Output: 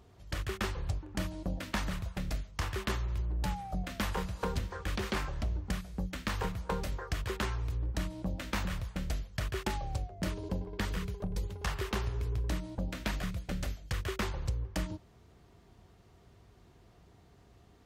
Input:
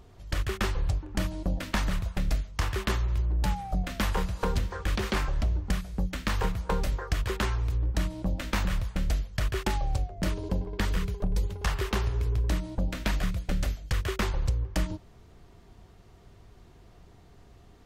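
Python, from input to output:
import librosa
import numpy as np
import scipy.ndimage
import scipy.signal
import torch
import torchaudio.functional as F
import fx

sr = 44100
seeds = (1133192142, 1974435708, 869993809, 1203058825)

y = scipy.signal.sosfilt(scipy.signal.butter(2, 53.0, 'highpass', fs=sr, output='sos'), x)
y = y * 10.0 ** (-4.5 / 20.0)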